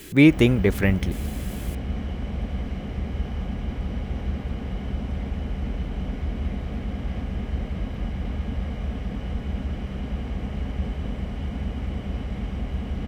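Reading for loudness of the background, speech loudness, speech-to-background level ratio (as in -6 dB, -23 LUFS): -31.0 LUFS, -19.5 LUFS, 11.5 dB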